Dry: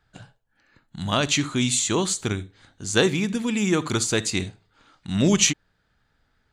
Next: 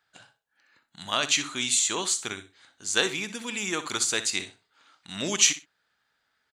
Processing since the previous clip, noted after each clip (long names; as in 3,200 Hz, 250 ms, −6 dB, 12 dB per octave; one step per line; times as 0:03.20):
high-pass filter 1,200 Hz 6 dB per octave
repeating echo 62 ms, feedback 18%, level −13.5 dB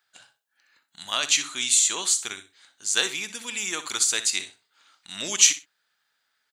spectral tilt +2.5 dB per octave
level −2.5 dB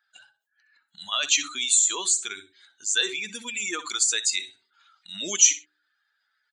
expanding power law on the bin magnitudes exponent 2
hum removal 75.59 Hz, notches 5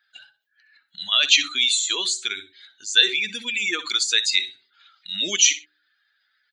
octave-band graphic EQ 1,000/2,000/4,000/8,000 Hz −7/+5/+8/−12 dB
level +3 dB